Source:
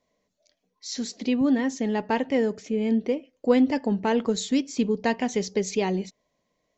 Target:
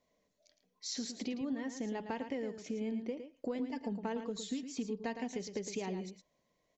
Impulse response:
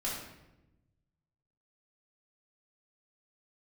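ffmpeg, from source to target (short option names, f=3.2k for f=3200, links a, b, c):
-filter_complex "[0:a]asettb=1/sr,asplit=3[a][b][c];[a]atrim=end=3.594[d];[b]atrim=start=3.59:end=5.32,asetpts=PTS-STARTPTS,afade=t=in:d=0.004:c=qsin,afade=t=out:st=1.726:d=0.004:c=qsin,aecho=1:1:4.4:0.65,atrim=end_sample=76293[e];[c]atrim=start=5.316[f];[d][e]acrossfade=d=0.004:c1=hsin:c2=qsin[g];[g][f]acrossfade=d=0.004:c1=qsin:c2=hsin,acompressor=threshold=-33dB:ratio=6,aecho=1:1:111:0.355,volume=-3.5dB"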